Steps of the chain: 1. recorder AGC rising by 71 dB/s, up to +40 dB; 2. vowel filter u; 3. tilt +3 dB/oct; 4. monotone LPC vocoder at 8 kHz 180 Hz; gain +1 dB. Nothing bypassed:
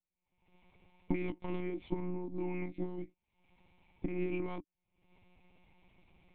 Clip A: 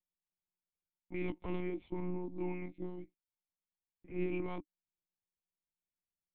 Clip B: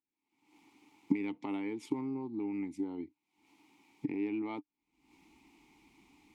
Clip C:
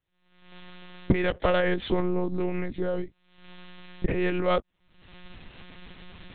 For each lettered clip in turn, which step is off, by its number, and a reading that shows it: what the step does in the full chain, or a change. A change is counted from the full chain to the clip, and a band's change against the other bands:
1, crest factor change -2.5 dB; 4, 125 Hz band -7.5 dB; 2, 250 Hz band -6.0 dB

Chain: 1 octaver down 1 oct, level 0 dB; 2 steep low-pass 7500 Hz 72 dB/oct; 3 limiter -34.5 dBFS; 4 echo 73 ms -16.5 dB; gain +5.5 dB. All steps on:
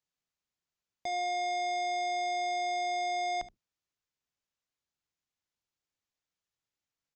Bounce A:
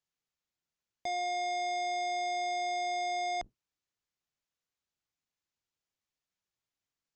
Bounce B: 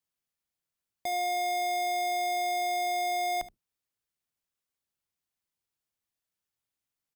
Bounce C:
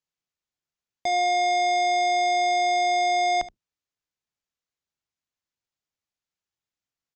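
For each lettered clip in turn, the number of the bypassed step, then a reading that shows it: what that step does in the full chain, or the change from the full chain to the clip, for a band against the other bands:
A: 4, loudness change -1.0 LU; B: 2, crest factor change -2.5 dB; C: 3, mean gain reduction 10.0 dB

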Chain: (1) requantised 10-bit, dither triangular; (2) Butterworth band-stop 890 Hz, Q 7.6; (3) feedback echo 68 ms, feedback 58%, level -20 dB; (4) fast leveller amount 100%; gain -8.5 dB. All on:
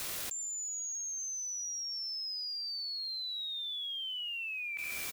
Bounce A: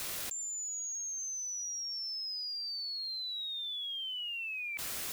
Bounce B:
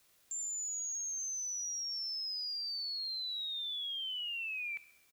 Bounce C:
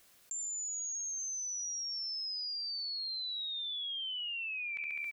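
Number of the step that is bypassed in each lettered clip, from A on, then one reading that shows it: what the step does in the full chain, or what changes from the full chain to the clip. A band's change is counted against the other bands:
3, crest factor change -1.5 dB; 4, crest factor change -4.5 dB; 1, distortion -29 dB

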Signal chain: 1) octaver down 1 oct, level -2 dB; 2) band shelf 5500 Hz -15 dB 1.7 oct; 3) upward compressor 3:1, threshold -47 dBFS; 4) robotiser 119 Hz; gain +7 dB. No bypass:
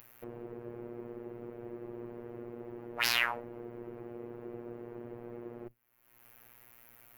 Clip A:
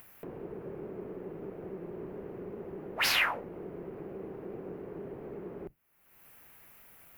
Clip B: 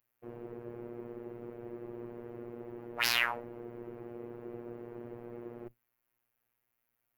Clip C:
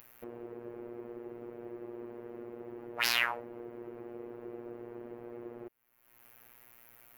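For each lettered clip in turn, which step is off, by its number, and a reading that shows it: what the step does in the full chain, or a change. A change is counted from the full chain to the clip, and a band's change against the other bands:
4, crest factor change -11.0 dB; 3, momentary loudness spread change -9 LU; 1, 125 Hz band -6.0 dB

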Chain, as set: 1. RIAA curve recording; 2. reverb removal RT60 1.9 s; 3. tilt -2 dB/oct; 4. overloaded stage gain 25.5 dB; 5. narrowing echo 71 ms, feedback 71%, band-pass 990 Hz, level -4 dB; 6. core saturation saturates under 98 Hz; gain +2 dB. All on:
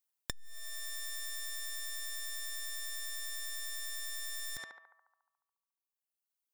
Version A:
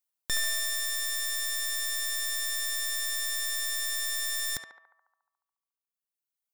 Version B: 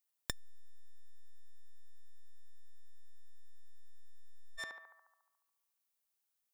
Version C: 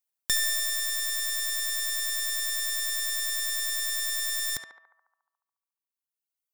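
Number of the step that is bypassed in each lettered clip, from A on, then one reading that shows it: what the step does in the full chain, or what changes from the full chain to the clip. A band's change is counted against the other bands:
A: 6, crest factor change -7.5 dB; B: 2, 8 kHz band -11.0 dB; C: 4, distortion -9 dB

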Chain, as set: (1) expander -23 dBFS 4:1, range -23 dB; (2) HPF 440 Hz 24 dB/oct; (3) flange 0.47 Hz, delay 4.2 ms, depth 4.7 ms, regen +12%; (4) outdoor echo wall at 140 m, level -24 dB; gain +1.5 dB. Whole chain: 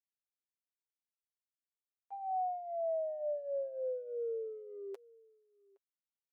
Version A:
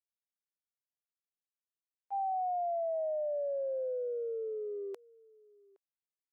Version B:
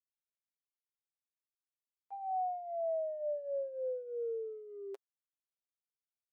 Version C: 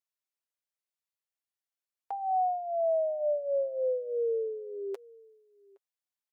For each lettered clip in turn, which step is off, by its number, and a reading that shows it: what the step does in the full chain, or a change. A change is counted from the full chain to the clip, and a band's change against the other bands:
3, crest factor change -2.0 dB; 4, echo-to-direct -26.5 dB to none; 1, loudness change +7.5 LU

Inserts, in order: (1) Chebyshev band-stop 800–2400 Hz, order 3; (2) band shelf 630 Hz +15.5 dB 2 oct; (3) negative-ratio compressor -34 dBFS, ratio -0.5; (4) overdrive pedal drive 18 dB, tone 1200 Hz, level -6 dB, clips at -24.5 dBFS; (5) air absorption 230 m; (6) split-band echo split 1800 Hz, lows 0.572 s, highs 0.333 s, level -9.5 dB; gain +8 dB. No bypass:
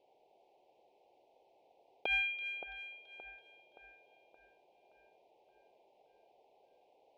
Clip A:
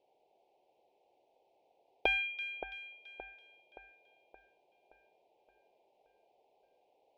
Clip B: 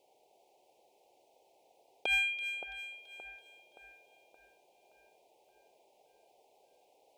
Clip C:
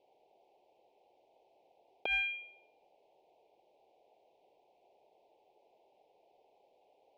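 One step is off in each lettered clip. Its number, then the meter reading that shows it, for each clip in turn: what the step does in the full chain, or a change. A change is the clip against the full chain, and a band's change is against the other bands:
3, crest factor change +6.5 dB; 5, 4 kHz band +4.0 dB; 6, echo-to-direct -8.0 dB to none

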